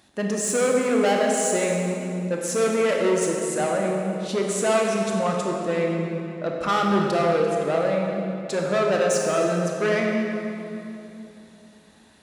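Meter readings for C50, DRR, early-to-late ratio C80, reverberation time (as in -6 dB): 0.5 dB, -0.5 dB, 2.0 dB, 3.0 s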